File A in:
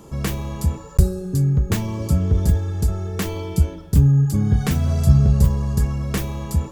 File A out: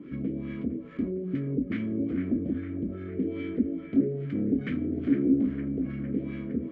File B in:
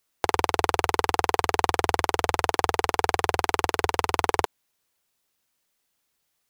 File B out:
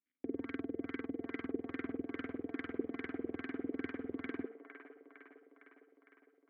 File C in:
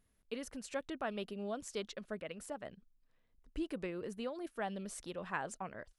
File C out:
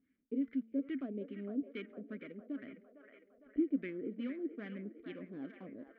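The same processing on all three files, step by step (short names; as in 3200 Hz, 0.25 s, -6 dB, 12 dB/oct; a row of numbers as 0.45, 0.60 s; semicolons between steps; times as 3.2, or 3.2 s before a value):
switching dead time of 0.11 ms; LPF 10000 Hz; high shelf 5900 Hz +10.5 dB; de-hum 225.8 Hz, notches 9; in parallel at 0 dB: compressor, threshold -25 dBFS; on the sum: limiter -2.5 dBFS; sine folder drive 11 dB, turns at -2.5 dBFS; vowel filter i; LFO low-pass sine 2.4 Hz 460–1600 Hz; on a send: band-limited delay 0.457 s, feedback 63%, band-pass 1100 Hz, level -6 dB; on the sum: gain -8.5 dB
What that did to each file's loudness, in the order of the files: -9.5, -17.0, +1.5 LU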